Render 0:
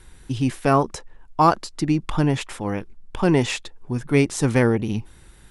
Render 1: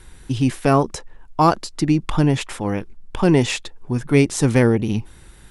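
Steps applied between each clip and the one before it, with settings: dynamic bell 1.2 kHz, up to -4 dB, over -30 dBFS, Q 0.75; trim +3.5 dB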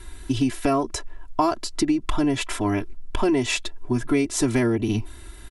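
comb 3 ms, depth 91%; compression 6:1, threshold -18 dBFS, peak gain reduction 10.5 dB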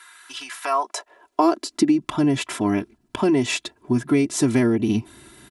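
high-pass sweep 1.3 kHz -> 160 Hz, 0.49–2.04 s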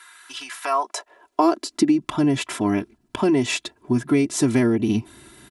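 no audible change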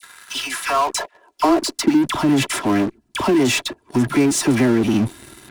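phase dispersion lows, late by 57 ms, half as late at 1.3 kHz; in parallel at -11 dB: fuzz box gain 35 dB, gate -44 dBFS

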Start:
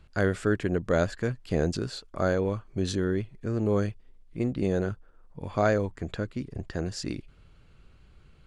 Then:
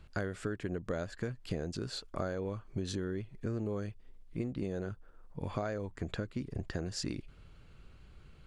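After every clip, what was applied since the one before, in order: compression 12:1, threshold -32 dBFS, peak gain reduction 14.5 dB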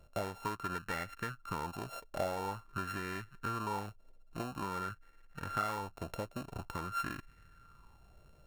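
sorted samples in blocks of 32 samples; sweeping bell 0.48 Hz 590–1900 Hz +15 dB; trim -6 dB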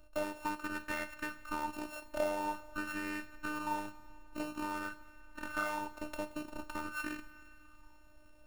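two-slope reverb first 0.38 s, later 3.7 s, from -18 dB, DRR 8.5 dB; robot voice 303 Hz; trim +2.5 dB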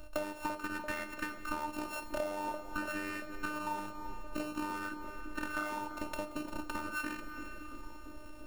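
compression 5:1, threshold -45 dBFS, peak gain reduction 15.5 dB; on a send: band-passed feedback delay 340 ms, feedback 79%, band-pass 380 Hz, level -6 dB; on the sum: trim +11 dB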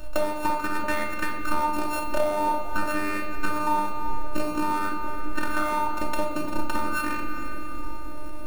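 simulated room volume 500 m³, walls mixed, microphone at 0.98 m; trim +8.5 dB

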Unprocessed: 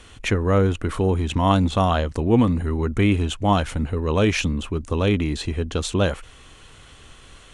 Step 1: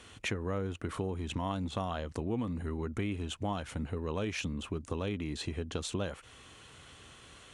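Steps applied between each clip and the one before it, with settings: high-pass 80 Hz; compression 4:1, threshold -27 dBFS, peak gain reduction 13 dB; trim -5.5 dB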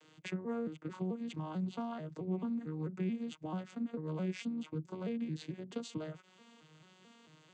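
vocoder on a broken chord minor triad, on D#3, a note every 220 ms; treble shelf 3.6 kHz +9 dB; trim -1.5 dB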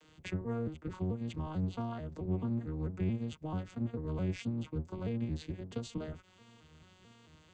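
octave divider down 1 oct, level 0 dB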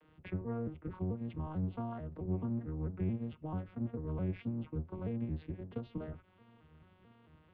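Gaussian low-pass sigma 3.4 samples; reverberation RT60 0.30 s, pre-delay 8 ms, DRR 19 dB; trim -1.5 dB

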